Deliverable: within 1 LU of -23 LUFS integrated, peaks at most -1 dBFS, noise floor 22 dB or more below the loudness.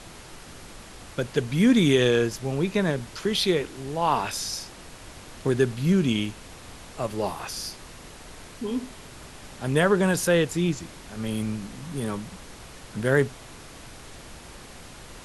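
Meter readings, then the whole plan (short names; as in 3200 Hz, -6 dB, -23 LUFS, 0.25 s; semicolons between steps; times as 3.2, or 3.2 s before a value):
noise floor -45 dBFS; noise floor target -48 dBFS; loudness -25.5 LUFS; peak -7.5 dBFS; loudness target -23.0 LUFS
-> noise print and reduce 6 dB; gain +2.5 dB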